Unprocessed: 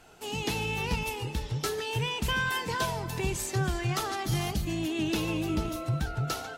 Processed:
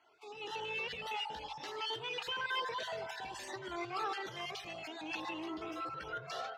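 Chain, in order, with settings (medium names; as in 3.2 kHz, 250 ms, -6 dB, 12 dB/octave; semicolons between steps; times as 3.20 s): random holes in the spectrogram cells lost 28%; high-pass 94 Hz 12 dB/octave; bass shelf 260 Hz +5.5 dB; hum notches 50/100/150 Hz; peak limiter -29 dBFS, peak gain reduction 13 dB; level rider gain up to 14 dB; saturation -16.5 dBFS, distortion -20 dB; three-band isolator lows -24 dB, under 390 Hz, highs -23 dB, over 4.7 kHz; band-passed feedback delay 87 ms, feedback 75%, band-pass 930 Hz, level -13.5 dB; Shepard-style flanger rising 0.55 Hz; trim -6.5 dB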